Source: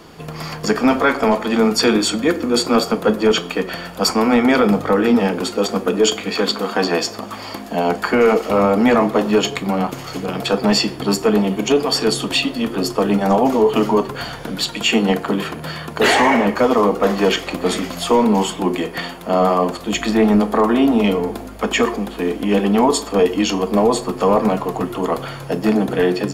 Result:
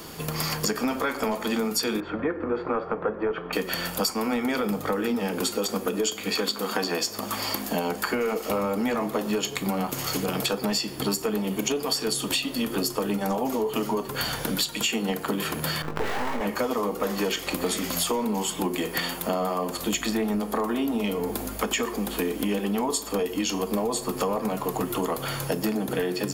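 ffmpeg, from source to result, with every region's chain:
ffmpeg -i in.wav -filter_complex "[0:a]asettb=1/sr,asplit=3[link_01][link_02][link_03];[link_01]atrim=end=2.004[link_04];[link_02]atrim=start=2:end=3.53,asetpts=PTS-STARTPTS,afade=type=in:duration=0.004:curve=qsin,afade=type=out:start_time=1.526:duration=0.004:curve=qsin,lowpass=frequency=1800:width=0.5412,lowpass=frequency=1800:width=1.3066,equalizer=frequency=230:width=2.2:gain=-10.5[link_05];[link_03]atrim=start=3.526[link_06];[link_04][link_05]acrossfade=duration=0.004:curve1=hsin:curve2=qsin[link_07];[link_07][link_06]acrossfade=duration=0.004:curve1=qsin:curve2=hsin,asettb=1/sr,asplit=3[link_08][link_09][link_10];[link_08]atrim=end=15.824[link_11];[link_09]atrim=start=15.82:end=16.41,asetpts=PTS-STARTPTS,afade=type=in:duration=0.004:curve=qsin,afade=type=out:start_time=0.586:duration=0.004:curve=qsin,lowpass=1500,aeval=exprs='max(val(0),0)':channel_layout=same,asplit=2[link_12][link_13];[link_13]adelay=20,volume=-3dB[link_14];[link_12][link_14]amix=inputs=2:normalize=0,atrim=end_sample=26019[link_15];[link_10]atrim=start=16.406[link_16];[link_11][link_15]acrossfade=duration=0.004:curve1=hsin:curve2=qsin[link_17];[link_17][link_16]acrossfade=duration=0.004:curve1=qsin:curve2=hsin,aemphasis=mode=production:type=50fm,bandreject=frequency=690:width=21,acompressor=threshold=-23dB:ratio=12" out.wav

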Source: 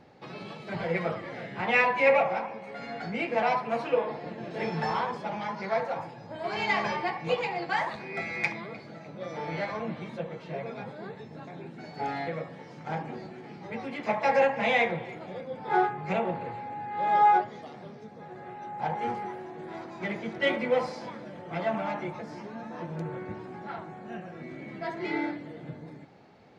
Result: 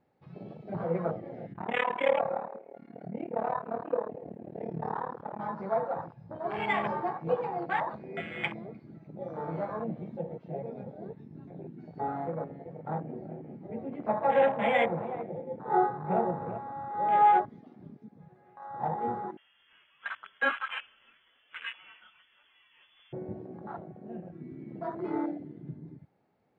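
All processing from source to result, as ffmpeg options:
ffmpeg -i in.wav -filter_complex "[0:a]asettb=1/sr,asplit=3[link_01][link_02][link_03];[link_01]atrim=end=1.534[link_04];[link_02]atrim=start=1.53:end=5.4,asetpts=PTS-STARTPTS,afade=type=in:duration=0.004:curve=qsin,afade=type=out:start_time=3.866:duration=0.004:curve=qsin,tremolo=f=37:d=0.889,adynamicsmooth=sensitivity=2:basefreq=3800,aecho=1:1:237|474:0.168|0.0302,atrim=end_sample=170667[link_05];[link_03]atrim=start=5.396[link_06];[link_04][link_05]acrossfade=duration=0.004:curve1=hsin:curve2=qsin[link_07];[link_07][link_06]acrossfade=duration=0.004:curve1=qsin:curve2=hsin,asettb=1/sr,asplit=3[link_08][link_09][link_10];[link_08]atrim=end=12.004[link_11];[link_09]atrim=start=12:end=16.58,asetpts=PTS-STARTPTS,afade=type=in:duration=0.004:curve=qsin,afade=type=out:start_time=4.576:duration=0.004:curve=qsin,lowpass=3000,aecho=1:1:382:0.335,atrim=end_sample=201978[link_12];[link_10]atrim=start=16.576[link_13];[link_11][link_12]acrossfade=duration=0.004:curve1=hsin:curve2=qsin[link_14];[link_14][link_13]acrossfade=duration=0.004:curve1=qsin:curve2=hsin,asettb=1/sr,asplit=3[link_15][link_16][link_17];[link_15]atrim=end=19.374[link_18];[link_16]atrim=start=19.37:end=23.13,asetpts=PTS-STARTPTS,afade=type=in:duration=0.004:curve=qsin,afade=type=out:start_time=3.756:duration=0.004:curve=qsin,tiltshelf=frequency=1100:gain=-9,lowpass=frequency=3100:width_type=q:width=0.5098,lowpass=frequency=3100:width_type=q:width=0.6013,lowpass=frequency=3100:width_type=q:width=0.9,lowpass=frequency=3100:width_type=q:width=2.563,afreqshift=-3600[link_19];[link_17]atrim=start=23.126[link_20];[link_18][link_19]acrossfade=duration=0.004:curve1=hsin:curve2=qsin[link_21];[link_21][link_20]acrossfade=duration=0.004:curve1=qsin:curve2=hsin,lowpass=frequency=2000:poles=1,afwtdn=0.0224" out.wav

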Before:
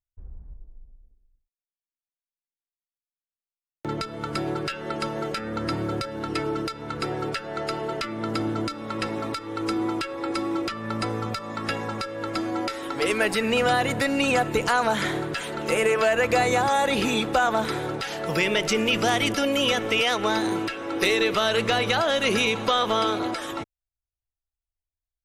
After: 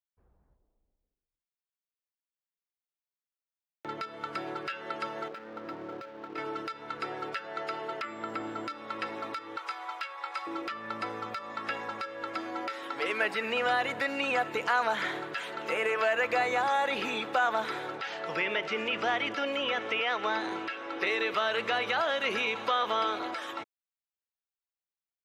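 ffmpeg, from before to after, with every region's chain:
ffmpeg -i in.wav -filter_complex "[0:a]asettb=1/sr,asplit=3[link_01][link_02][link_03];[link_01]atrim=end=5.284[link_04];[link_02]atrim=start=5.28:end=6.38,asetpts=PTS-STARTPTS,afade=type=in:duration=0.004:curve=qsin,afade=type=out:start_time=1.096:duration=0.004:curve=qsin,bandpass=frequency=360:width_type=q:width=0.52,aeval=exprs='sgn(val(0))*max(abs(val(0))-0.00531,0)':channel_layout=same[link_05];[link_03]atrim=start=6.376[link_06];[link_04][link_05]acrossfade=duration=0.004:curve1=hsin:curve2=qsin[link_07];[link_07][link_06]acrossfade=duration=0.004:curve1=qsin:curve2=hsin,asettb=1/sr,asplit=3[link_08][link_09][link_10];[link_08]atrim=end=8.024[link_11];[link_09]atrim=start=8.02:end=8.67,asetpts=PTS-STARTPTS,afade=type=in:duration=0.004:curve=qsin,afade=type=out:start_time=0.646:duration=0.004:curve=qsin,acrossover=split=2800[link_12][link_13];[link_13]acompressor=threshold=-50dB:ratio=4:attack=1:release=60[link_14];[link_12][link_14]amix=inputs=2:normalize=0,aeval=exprs='val(0)+0.00224*sin(2*PI*7500*n/s)':channel_layout=same[link_15];[link_10]atrim=start=8.666[link_16];[link_11][link_15]acrossfade=duration=0.004:curve1=hsin:curve2=qsin[link_17];[link_17][link_16]acrossfade=duration=0.004:curve1=qsin:curve2=hsin,asettb=1/sr,asplit=3[link_18][link_19][link_20];[link_18]atrim=end=9.574[link_21];[link_19]atrim=start=9.57:end=10.47,asetpts=PTS-STARTPTS,afade=type=in:duration=0.004:curve=qsin,afade=type=out:start_time=0.896:duration=0.004:curve=qsin,highpass=frequency=650:width=0.5412,highpass=frequency=650:width=1.3066,asplit=2[link_22][link_23];[link_23]adelay=19,volume=-8dB[link_24];[link_22][link_24]amix=inputs=2:normalize=0,atrim=end_sample=39690[link_25];[link_20]atrim=start=10.466[link_26];[link_21][link_25]acrossfade=duration=0.004:curve1=hsin:curve2=qsin[link_27];[link_27][link_26]acrossfade=duration=0.004:curve1=qsin:curve2=hsin,asettb=1/sr,asplit=3[link_28][link_29][link_30];[link_28]atrim=end=17.984[link_31];[link_29]atrim=start=17.98:end=21.07,asetpts=PTS-STARTPTS,afade=type=in:duration=0.004:curve=qsin,afade=type=out:start_time=3.086:duration=0.004:curve=qsin,lowpass=7200,acrossover=split=3400[link_32][link_33];[link_33]acompressor=threshold=-39dB:ratio=4:attack=1:release=60[link_34];[link_32][link_34]amix=inputs=2:normalize=0[link_35];[link_30]atrim=start=21.066[link_36];[link_31][link_35]acrossfade=duration=0.004:curve1=hsin:curve2=qsin[link_37];[link_37][link_36]acrossfade=duration=0.004:curve1=qsin:curve2=hsin,highpass=frequency=1200:poles=1,acrossover=split=2800[link_38][link_39];[link_39]acompressor=threshold=-35dB:ratio=4:attack=1:release=60[link_40];[link_38][link_40]amix=inputs=2:normalize=0,equalizer=frequency=10000:width_type=o:width=1.6:gain=-15" out.wav

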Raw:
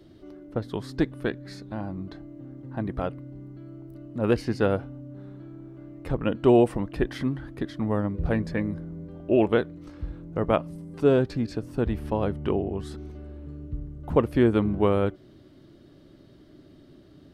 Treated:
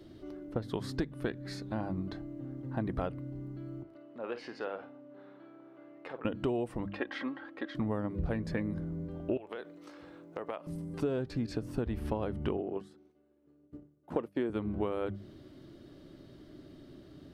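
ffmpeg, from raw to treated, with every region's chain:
ffmpeg -i in.wav -filter_complex "[0:a]asettb=1/sr,asplit=3[link_01][link_02][link_03];[link_01]atrim=end=3.834[link_04];[link_02]atrim=start=3.83:end=6.25,asetpts=PTS-STARTPTS,afade=type=in:duration=0.004:curve=qsin,afade=type=out:start_time=2.416:duration=0.004:curve=qsin,acompressor=threshold=-33dB:ratio=2.5:attack=3.2:release=140:knee=1:detection=peak,highpass=490,lowpass=3400,asplit=2[link_05][link_06];[link_06]adelay=50,volume=-11dB[link_07];[link_05][link_07]amix=inputs=2:normalize=0,atrim=end_sample=106722[link_08];[link_03]atrim=start=6.246[link_09];[link_04][link_08]acrossfade=duration=0.004:curve1=hsin:curve2=qsin[link_10];[link_10][link_09]acrossfade=duration=0.004:curve1=qsin:curve2=hsin,asettb=1/sr,asplit=3[link_11][link_12][link_13];[link_11]atrim=end=6.864[link_14];[link_12]atrim=start=6.86:end=7.75,asetpts=PTS-STARTPTS,afade=type=in:duration=0.004:curve=qsin,afade=type=out:start_time=0.886:duration=0.004:curve=qsin,highpass=530,lowpass=3000,aecho=1:1:3.7:0.55,atrim=end_sample=39249[link_15];[link_13]atrim=start=7.746[link_16];[link_14][link_15]acrossfade=duration=0.004:curve1=hsin:curve2=qsin[link_17];[link_17][link_16]acrossfade=duration=0.004:curve1=qsin:curve2=hsin,asettb=1/sr,asplit=3[link_18][link_19][link_20];[link_18]atrim=end=9.374[link_21];[link_19]atrim=start=9.37:end=10.67,asetpts=PTS-STARTPTS,afade=type=in:duration=0.004:curve=qsin,afade=type=out:start_time=1.296:duration=0.004:curve=qsin,highpass=440,acompressor=threshold=-33dB:ratio=16:attack=3.2:release=140:knee=1:detection=peak[link_22];[link_20]atrim=start=10.666[link_23];[link_21][link_22]acrossfade=duration=0.004:curve1=hsin:curve2=qsin[link_24];[link_24][link_23]acrossfade=duration=0.004:curve1=qsin:curve2=hsin,asettb=1/sr,asplit=3[link_25][link_26][link_27];[link_25]atrim=end=12.574[link_28];[link_26]atrim=start=12.57:end=14.5,asetpts=PTS-STARTPTS,afade=type=in:duration=0.004:curve=qsin,afade=type=out:start_time=1.926:duration=0.004:curve=qsin,agate=range=-33dB:threshold=-26dB:ratio=3:release=100:detection=peak,highpass=300,lowshelf=frequency=470:gain=5[link_29];[link_27]atrim=start=14.496[link_30];[link_28][link_29]acrossfade=duration=0.004:curve1=hsin:curve2=qsin[link_31];[link_31][link_30]acrossfade=duration=0.004:curve1=qsin:curve2=hsin,bandreject=frequency=50:width_type=h:width=6,bandreject=frequency=100:width_type=h:width=6,bandreject=frequency=150:width_type=h:width=6,bandreject=frequency=200:width_type=h:width=6,acompressor=threshold=-29dB:ratio=12" out.wav

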